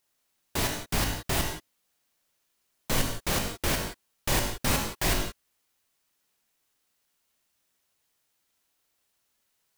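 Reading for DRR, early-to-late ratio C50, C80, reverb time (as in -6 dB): 2.0 dB, 4.5 dB, 7.0 dB, no single decay rate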